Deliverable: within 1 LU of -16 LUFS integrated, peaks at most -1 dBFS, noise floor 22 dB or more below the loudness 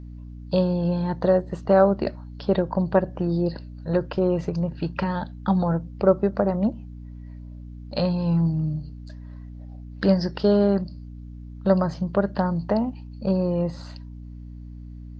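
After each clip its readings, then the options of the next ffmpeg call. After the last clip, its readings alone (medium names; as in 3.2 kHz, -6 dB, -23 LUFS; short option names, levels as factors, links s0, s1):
hum 60 Hz; highest harmonic 300 Hz; hum level -36 dBFS; loudness -23.5 LUFS; peak level -5.0 dBFS; loudness target -16.0 LUFS
-> -af "bandreject=f=60:t=h:w=4,bandreject=f=120:t=h:w=4,bandreject=f=180:t=h:w=4,bandreject=f=240:t=h:w=4,bandreject=f=300:t=h:w=4"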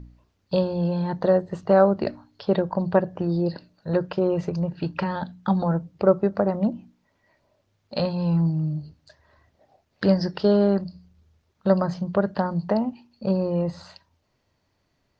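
hum not found; loudness -24.0 LUFS; peak level -5.0 dBFS; loudness target -16.0 LUFS
-> -af "volume=2.51,alimiter=limit=0.891:level=0:latency=1"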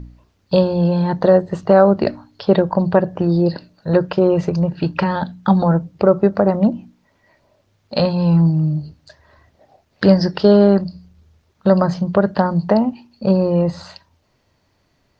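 loudness -16.5 LUFS; peak level -1.0 dBFS; noise floor -63 dBFS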